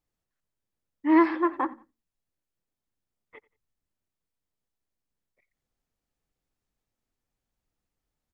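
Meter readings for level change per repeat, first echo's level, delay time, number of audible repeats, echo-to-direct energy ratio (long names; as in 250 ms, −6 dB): −10.5 dB, −22.0 dB, 89 ms, 2, −21.5 dB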